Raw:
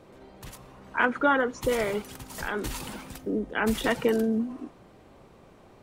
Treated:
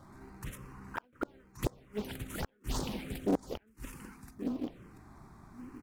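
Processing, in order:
gate with flip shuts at −19 dBFS, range −41 dB
in parallel at −11.5 dB: sample-and-hold swept by an LFO 41×, swing 100% 2.8 Hz
on the sum: single-tap delay 1,127 ms −10.5 dB
phaser swept by the level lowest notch 410 Hz, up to 2,800 Hz, full sweep at −29 dBFS
highs frequency-modulated by the lows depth 0.45 ms
level +1 dB

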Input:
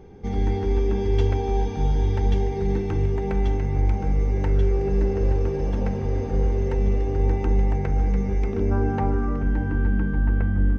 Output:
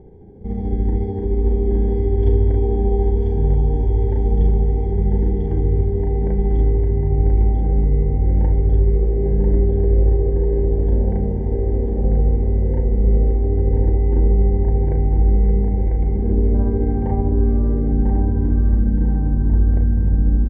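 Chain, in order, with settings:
moving average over 34 samples
time stretch by overlap-add 1.9×, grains 147 ms
on a send: repeating echo 995 ms, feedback 41%, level −5 dB
on the sum: level +4.5 dB

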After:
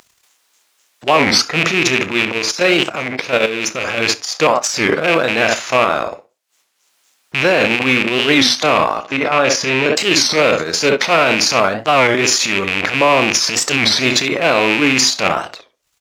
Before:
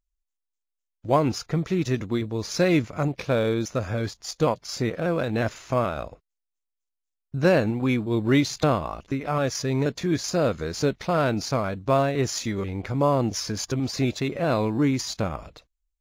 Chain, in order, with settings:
loose part that buzzes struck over −29 dBFS, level −18 dBFS
tape delay 61 ms, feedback 22%, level −10 dB, low-pass 1,400 Hz
transient designer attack −7 dB, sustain +10 dB
0:09.03–0:09.97: high-shelf EQ 6,700 Hz −10 dB
ambience of single reflections 31 ms −13 dB, 70 ms −18 dB
upward compression, threshold −39 dBFS
transient designer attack +6 dB, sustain −6 dB
0:02.38–0:03.98: output level in coarse steps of 10 dB
meter weighting curve A
boost into a limiter +14 dB
wow of a warped record 33 1/3 rpm, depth 250 cents
level −1 dB

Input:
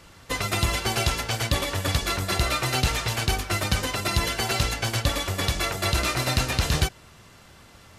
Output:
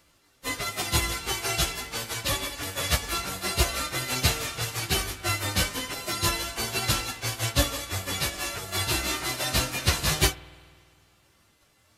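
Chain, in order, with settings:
spectral envelope flattened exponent 0.6
parametric band 300 Hz +4.5 dB 0.34 octaves
time stretch by phase vocoder 1.5×
spring reverb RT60 2.7 s, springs 50 ms, chirp 25 ms, DRR 11.5 dB
expander for the loud parts 1.5 to 1, over −47 dBFS
level +2.5 dB

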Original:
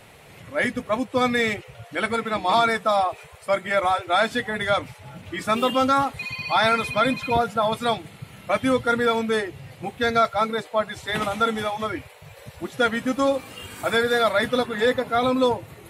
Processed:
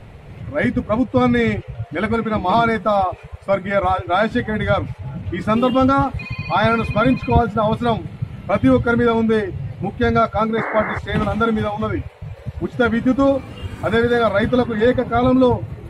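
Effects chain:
RIAA equalisation playback
sound drawn into the spectrogram noise, 0:10.57–0:10.99, 270–2,200 Hz −27 dBFS
level +2.5 dB

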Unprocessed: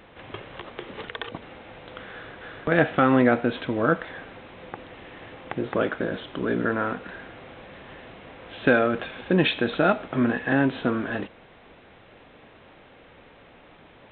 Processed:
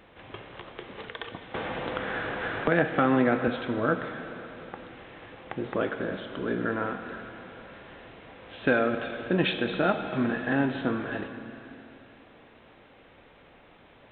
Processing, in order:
dense smooth reverb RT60 3.2 s, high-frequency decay 1×, DRR 7 dB
0:01.54–0:03.48: multiband upward and downward compressor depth 70%
level −4.5 dB

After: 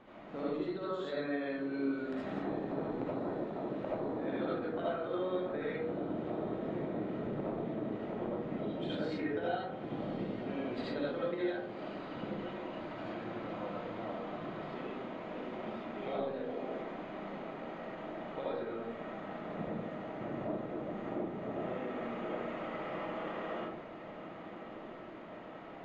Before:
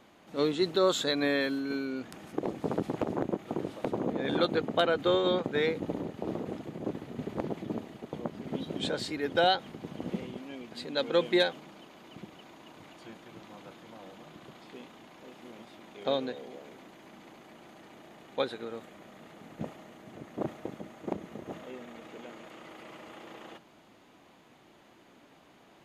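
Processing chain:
low-pass filter 2,200 Hz 12 dB per octave
downward compressor 12 to 1, threshold −41 dBFS, peak gain reduction 21 dB
feedback delay with all-pass diffusion 1,174 ms, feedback 71%, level −12 dB
comb and all-pass reverb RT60 0.76 s, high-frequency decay 0.35×, pre-delay 35 ms, DRR −7.5 dB

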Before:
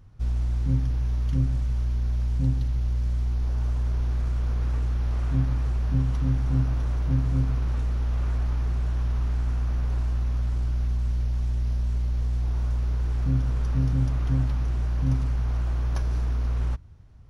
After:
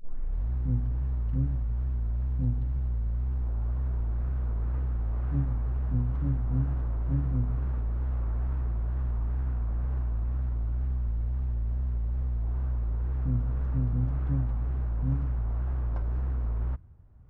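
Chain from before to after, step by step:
turntable start at the beginning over 0.53 s
low-pass filter 1,400 Hz 12 dB per octave
tape wow and flutter 120 cents
level −4 dB

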